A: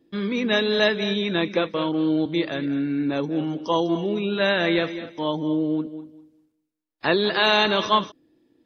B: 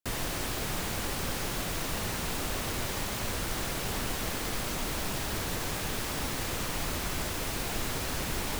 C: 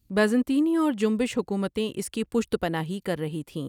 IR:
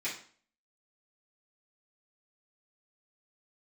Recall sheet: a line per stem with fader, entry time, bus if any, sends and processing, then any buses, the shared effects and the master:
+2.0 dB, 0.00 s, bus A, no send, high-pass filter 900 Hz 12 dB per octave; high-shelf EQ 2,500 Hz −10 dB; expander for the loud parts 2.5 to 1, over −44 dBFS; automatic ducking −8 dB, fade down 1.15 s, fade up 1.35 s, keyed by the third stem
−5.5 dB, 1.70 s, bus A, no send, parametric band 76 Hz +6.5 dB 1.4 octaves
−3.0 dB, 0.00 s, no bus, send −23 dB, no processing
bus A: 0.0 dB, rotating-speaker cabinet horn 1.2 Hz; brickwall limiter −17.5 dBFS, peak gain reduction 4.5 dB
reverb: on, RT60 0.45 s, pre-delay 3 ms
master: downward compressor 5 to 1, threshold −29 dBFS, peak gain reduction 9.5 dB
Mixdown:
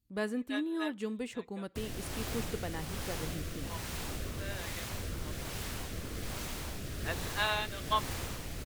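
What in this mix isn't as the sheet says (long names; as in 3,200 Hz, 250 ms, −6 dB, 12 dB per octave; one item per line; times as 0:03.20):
stem C −3.0 dB → −13.0 dB
master: missing downward compressor 5 to 1, threshold −29 dBFS, peak gain reduction 9.5 dB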